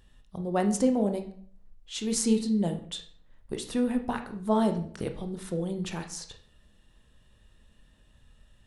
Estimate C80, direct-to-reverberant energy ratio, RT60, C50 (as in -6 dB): 15.0 dB, 5.5 dB, 0.55 s, 11.0 dB